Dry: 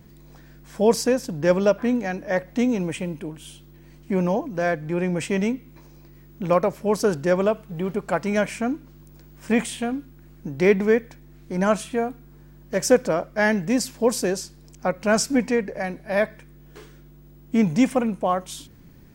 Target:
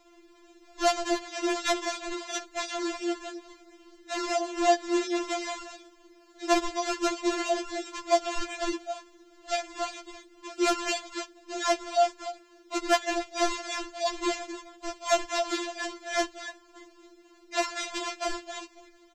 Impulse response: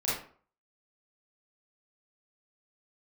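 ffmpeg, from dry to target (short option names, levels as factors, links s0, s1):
-filter_complex "[0:a]aecho=1:1:265:0.316,aresample=16000,acrusher=samples=15:mix=1:aa=0.000001:lfo=1:lforange=24:lforate=2.9,aresample=44100,tiltshelf=f=900:g=-4.5,bandreject=f=60:t=h:w=6,bandreject=f=120:t=h:w=6,bandreject=f=180:t=h:w=6,bandreject=f=240:t=h:w=6,bandreject=f=300:t=h:w=6,asoftclip=type=tanh:threshold=0.531,equalizer=f=200:t=o:w=0.33:g=-6,equalizer=f=315:t=o:w=0.33:g=5,equalizer=f=630:t=o:w=0.33:g=12,asplit=2[s0][s1];[1:a]atrim=start_sample=2205,asetrate=83790,aresample=44100,adelay=23[s2];[s1][s2]afir=irnorm=-1:irlink=0,volume=0.0447[s3];[s0][s3]amix=inputs=2:normalize=0,acrusher=bits=11:mix=0:aa=0.000001,afftfilt=real='re*4*eq(mod(b,16),0)':imag='im*4*eq(mod(b,16),0)':win_size=2048:overlap=0.75,volume=0.596"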